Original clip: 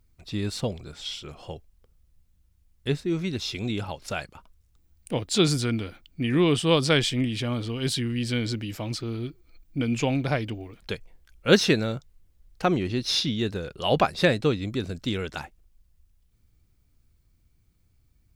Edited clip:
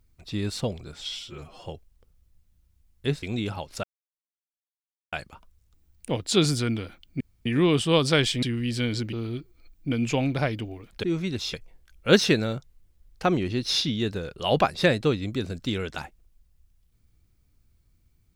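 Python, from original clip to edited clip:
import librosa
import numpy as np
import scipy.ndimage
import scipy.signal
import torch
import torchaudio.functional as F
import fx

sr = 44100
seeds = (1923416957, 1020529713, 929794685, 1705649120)

y = fx.edit(x, sr, fx.stretch_span(start_s=1.09, length_s=0.37, factor=1.5),
    fx.move(start_s=3.04, length_s=0.5, to_s=10.93),
    fx.insert_silence(at_s=4.15, length_s=1.29),
    fx.insert_room_tone(at_s=6.23, length_s=0.25),
    fx.cut(start_s=7.2, length_s=0.75),
    fx.cut(start_s=8.65, length_s=0.37), tone=tone)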